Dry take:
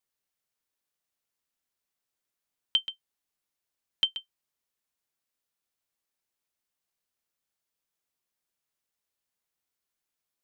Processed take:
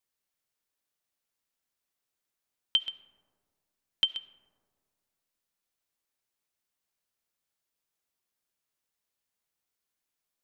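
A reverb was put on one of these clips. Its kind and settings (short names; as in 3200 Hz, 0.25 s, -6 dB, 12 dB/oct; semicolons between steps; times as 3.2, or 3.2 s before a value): digital reverb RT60 2 s, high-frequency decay 0.25×, pre-delay 30 ms, DRR 15 dB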